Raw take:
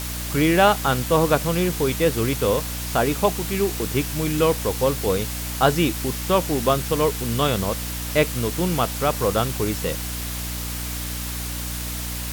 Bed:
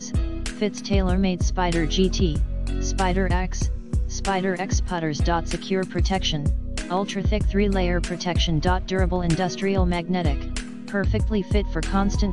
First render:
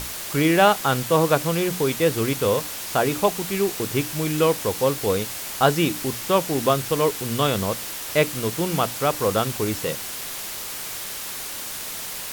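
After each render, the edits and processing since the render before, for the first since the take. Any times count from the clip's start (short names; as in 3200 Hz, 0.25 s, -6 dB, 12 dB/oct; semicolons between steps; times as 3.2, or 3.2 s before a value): notches 60/120/180/240/300 Hz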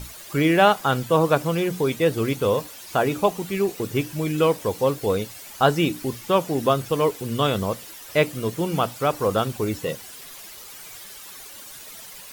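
denoiser 12 dB, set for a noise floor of -33 dBFS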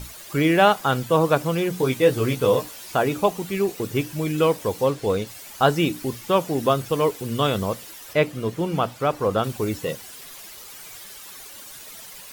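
1.78–2.92 doubler 16 ms -4 dB; 4.86–5.27 median filter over 3 samples; 8.13–9.44 high shelf 5000 Hz -9 dB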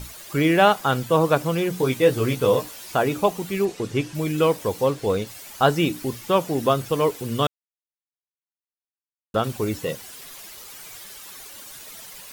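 3.65–4.15 LPF 8000 Hz; 7.47–9.34 mute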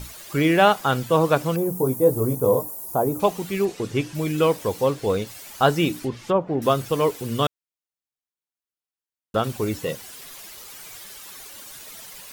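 1.56–3.2 EQ curve 950 Hz 0 dB, 1700 Hz -19 dB, 2900 Hz -28 dB, 12000 Hz +8 dB; 5.99–6.62 treble ducked by the level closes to 970 Hz, closed at -17 dBFS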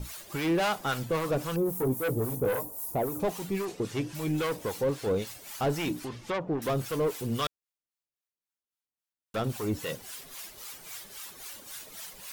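soft clip -20.5 dBFS, distortion -8 dB; harmonic tremolo 3.7 Hz, depth 70%, crossover 760 Hz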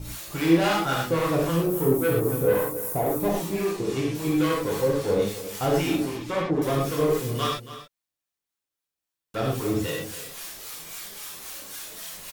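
echo 0.278 s -14 dB; non-linear reverb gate 0.14 s flat, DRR -3.5 dB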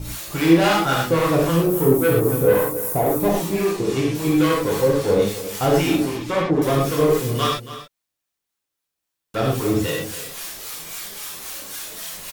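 gain +5.5 dB; limiter -3 dBFS, peak gain reduction 1.5 dB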